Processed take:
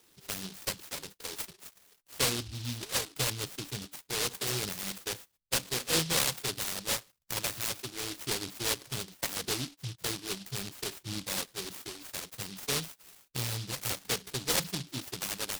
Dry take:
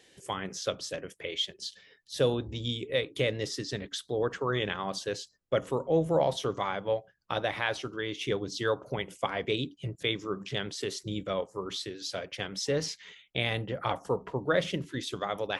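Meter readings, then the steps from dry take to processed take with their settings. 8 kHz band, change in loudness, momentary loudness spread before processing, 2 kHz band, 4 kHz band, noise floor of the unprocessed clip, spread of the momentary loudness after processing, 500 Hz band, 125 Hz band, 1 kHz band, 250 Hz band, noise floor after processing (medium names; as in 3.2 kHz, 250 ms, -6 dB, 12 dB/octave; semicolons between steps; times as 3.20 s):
+10.0 dB, -1.0 dB, 8 LU, -2.5 dB, +1.0 dB, -63 dBFS, 11 LU, -11.0 dB, -3.5 dB, -6.5 dB, -6.0 dB, -69 dBFS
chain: spectral contrast enhancement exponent 1.6; dynamic bell 4.8 kHz, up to -7 dB, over -50 dBFS, Q 0.85; delay time shaken by noise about 3.9 kHz, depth 0.49 ms; trim -3 dB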